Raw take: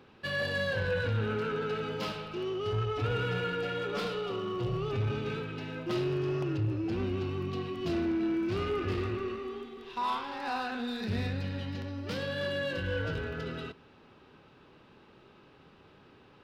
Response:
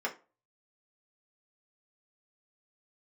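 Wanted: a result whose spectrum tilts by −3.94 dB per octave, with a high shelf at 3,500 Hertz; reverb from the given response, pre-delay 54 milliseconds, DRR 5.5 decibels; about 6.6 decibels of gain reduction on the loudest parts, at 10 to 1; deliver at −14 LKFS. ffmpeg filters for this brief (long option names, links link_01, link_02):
-filter_complex "[0:a]highshelf=frequency=3500:gain=7.5,acompressor=threshold=-33dB:ratio=10,asplit=2[link_01][link_02];[1:a]atrim=start_sample=2205,adelay=54[link_03];[link_02][link_03]afir=irnorm=-1:irlink=0,volume=-11.5dB[link_04];[link_01][link_04]amix=inputs=2:normalize=0,volume=22.5dB"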